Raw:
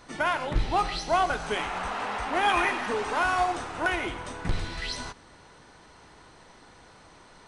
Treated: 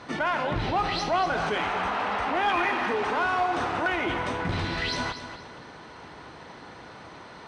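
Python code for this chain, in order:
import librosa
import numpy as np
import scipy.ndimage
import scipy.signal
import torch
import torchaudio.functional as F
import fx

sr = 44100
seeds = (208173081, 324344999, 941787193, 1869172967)

p1 = scipy.signal.sosfilt(scipy.signal.butter(2, 86.0, 'highpass', fs=sr, output='sos'), x)
p2 = fx.peak_eq(p1, sr, hz=8000.0, db=-7.5, octaves=1.0)
p3 = fx.over_compress(p2, sr, threshold_db=-36.0, ratio=-1.0)
p4 = p2 + (p3 * 10.0 ** (-1.0 / 20.0))
p5 = 10.0 ** (-16.0 / 20.0) * np.tanh(p4 / 10.0 ** (-16.0 / 20.0))
p6 = fx.air_absorb(p5, sr, metres=61.0)
y = p6 + fx.echo_feedback(p6, sr, ms=237, feedback_pct=30, wet_db=-10.5, dry=0)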